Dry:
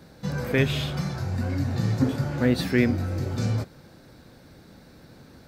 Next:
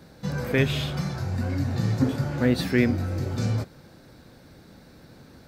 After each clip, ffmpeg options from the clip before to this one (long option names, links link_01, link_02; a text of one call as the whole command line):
ffmpeg -i in.wav -af anull out.wav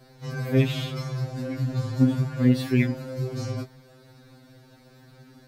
ffmpeg -i in.wav -af "afftfilt=real='re*2.45*eq(mod(b,6),0)':imag='im*2.45*eq(mod(b,6),0)':win_size=2048:overlap=0.75" out.wav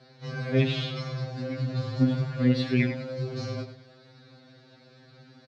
ffmpeg -i in.wav -af "highpass=130,equalizer=frequency=310:width_type=q:width=4:gain=-9,equalizer=frequency=940:width_type=q:width=4:gain=-5,equalizer=frequency=4100:width_type=q:width=4:gain=4,lowpass=frequency=5300:width=0.5412,lowpass=frequency=5300:width=1.3066,aecho=1:1:98|196|294:0.282|0.0846|0.0254" out.wav